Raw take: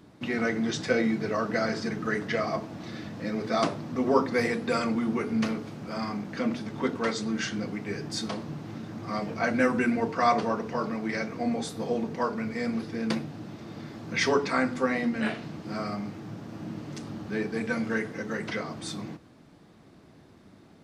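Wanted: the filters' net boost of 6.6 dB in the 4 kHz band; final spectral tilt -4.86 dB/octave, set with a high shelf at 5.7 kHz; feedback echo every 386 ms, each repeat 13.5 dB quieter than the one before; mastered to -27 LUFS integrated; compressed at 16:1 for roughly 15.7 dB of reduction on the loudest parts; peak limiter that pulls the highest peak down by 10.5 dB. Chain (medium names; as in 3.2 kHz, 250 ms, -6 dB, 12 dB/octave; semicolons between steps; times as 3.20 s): peaking EQ 4 kHz +5 dB; treble shelf 5.7 kHz +7.5 dB; compression 16:1, threshold -32 dBFS; peak limiter -29.5 dBFS; feedback delay 386 ms, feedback 21%, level -13.5 dB; trim +11.5 dB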